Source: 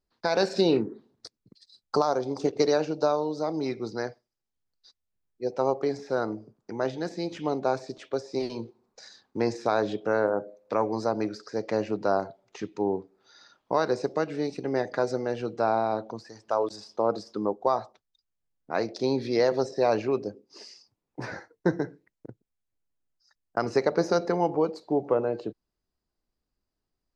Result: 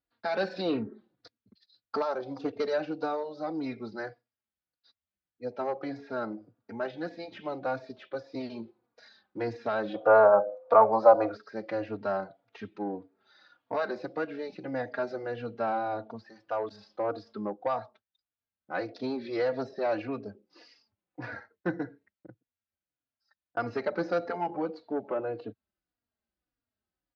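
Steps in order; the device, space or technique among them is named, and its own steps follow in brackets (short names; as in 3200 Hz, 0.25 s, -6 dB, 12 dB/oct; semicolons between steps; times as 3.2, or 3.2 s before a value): barber-pole flanger into a guitar amplifier (endless flanger 3.6 ms -1.7 Hz; soft clip -17.5 dBFS, distortion -20 dB; speaker cabinet 75–3900 Hz, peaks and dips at 150 Hz -9 dB, 400 Hz -7 dB, 990 Hz -4 dB, 1500 Hz +4 dB); 9.94–11.37 band shelf 790 Hz +15.5 dB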